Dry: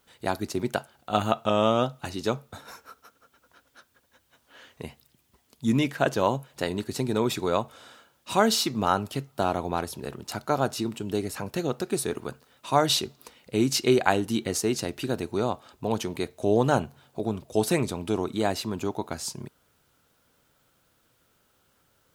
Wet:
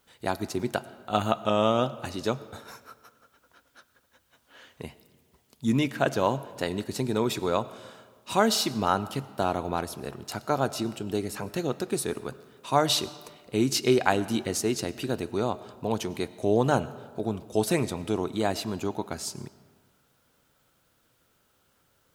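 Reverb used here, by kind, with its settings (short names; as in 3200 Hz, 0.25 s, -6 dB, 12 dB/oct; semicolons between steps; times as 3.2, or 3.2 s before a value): digital reverb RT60 1.6 s, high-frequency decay 0.65×, pre-delay 60 ms, DRR 17 dB; gain -1 dB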